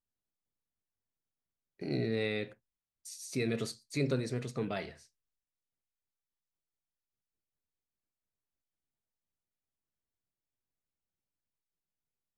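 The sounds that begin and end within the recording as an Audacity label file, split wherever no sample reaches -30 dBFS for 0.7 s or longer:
1.820000	2.430000	sound
3.360000	4.820000	sound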